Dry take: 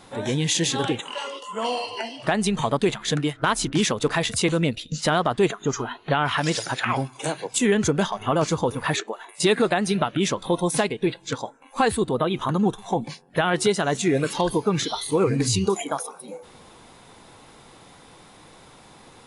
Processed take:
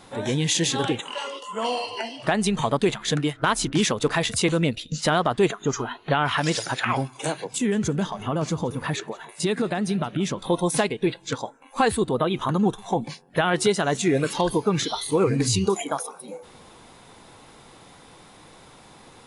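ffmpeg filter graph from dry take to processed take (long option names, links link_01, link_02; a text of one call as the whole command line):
ffmpeg -i in.wav -filter_complex "[0:a]asettb=1/sr,asplit=3[link_01][link_02][link_03];[link_01]atrim=end=7.444[link_04];[link_02]atrim=start=7.44:end=10.39,asetpts=PTS-STARTPTS,afade=type=in:duration=0.004:curve=qsin,afade=type=out:start_time=2.946:duration=0.004:curve=qsin,equalizer=frequency=170:width=0.72:gain=7,acompressor=threshold=-33dB:ratio=1.5:attack=3.2:release=140:knee=1:detection=peak,aecho=1:1:173|346|519:0.0891|0.0303|0.0103,atrim=end_sample=130095[link_05];[link_03]atrim=start=10.386[link_06];[link_04][link_05]acrossfade=duration=0.004:curve1=hsin:curve2=qsin[link_07];[link_07][link_06]acrossfade=duration=0.004:curve1=qsin:curve2=hsin" out.wav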